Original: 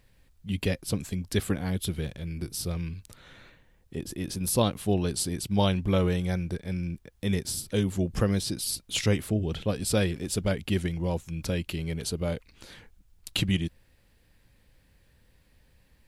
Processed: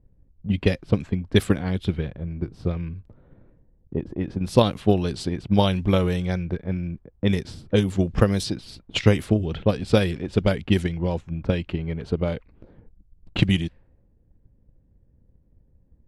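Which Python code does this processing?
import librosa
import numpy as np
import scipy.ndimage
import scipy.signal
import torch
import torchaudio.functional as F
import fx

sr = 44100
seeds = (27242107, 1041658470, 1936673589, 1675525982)

y = fx.env_lowpass(x, sr, base_hz=370.0, full_db=-21.0)
y = fx.transient(y, sr, attack_db=8, sustain_db=3)
y = F.gain(torch.from_numpy(y), 2.0).numpy()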